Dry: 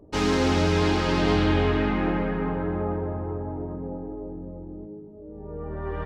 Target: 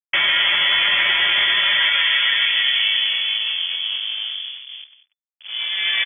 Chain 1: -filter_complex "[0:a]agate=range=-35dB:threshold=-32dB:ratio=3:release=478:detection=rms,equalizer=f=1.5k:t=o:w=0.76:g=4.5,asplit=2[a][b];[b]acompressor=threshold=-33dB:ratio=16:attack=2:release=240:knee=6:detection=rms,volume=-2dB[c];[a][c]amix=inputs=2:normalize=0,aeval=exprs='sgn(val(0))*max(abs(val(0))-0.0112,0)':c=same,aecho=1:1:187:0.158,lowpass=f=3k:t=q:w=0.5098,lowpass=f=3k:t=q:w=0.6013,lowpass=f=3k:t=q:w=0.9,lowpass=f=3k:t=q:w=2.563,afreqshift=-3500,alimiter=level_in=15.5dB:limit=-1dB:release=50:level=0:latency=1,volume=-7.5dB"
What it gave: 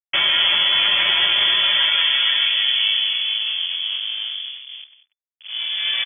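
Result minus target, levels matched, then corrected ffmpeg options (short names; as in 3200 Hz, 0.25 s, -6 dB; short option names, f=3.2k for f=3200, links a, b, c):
2000 Hz band -4.5 dB
-filter_complex "[0:a]agate=range=-35dB:threshold=-32dB:ratio=3:release=478:detection=rms,equalizer=f=1.5k:t=o:w=0.76:g=14.5,asplit=2[a][b];[b]acompressor=threshold=-33dB:ratio=16:attack=2:release=240:knee=6:detection=rms,volume=-2dB[c];[a][c]amix=inputs=2:normalize=0,aeval=exprs='sgn(val(0))*max(abs(val(0))-0.0112,0)':c=same,aecho=1:1:187:0.158,lowpass=f=3k:t=q:w=0.5098,lowpass=f=3k:t=q:w=0.6013,lowpass=f=3k:t=q:w=0.9,lowpass=f=3k:t=q:w=2.563,afreqshift=-3500,alimiter=level_in=15.5dB:limit=-1dB:release=50:level=0:latency=1,volume=-7.5dB"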